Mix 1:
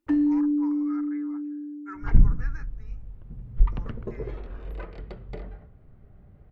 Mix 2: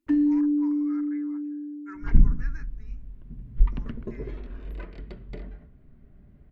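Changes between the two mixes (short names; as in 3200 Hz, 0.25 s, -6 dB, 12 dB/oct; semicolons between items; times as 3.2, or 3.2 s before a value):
first sound: send -6.0 dB; master: add thirty-one-band EQ 100 Hz -10 dB, 250 Hz +6 dB, 500 Hz -8 dB, 800 Hz -9 dB, 1250 Hz -6 dB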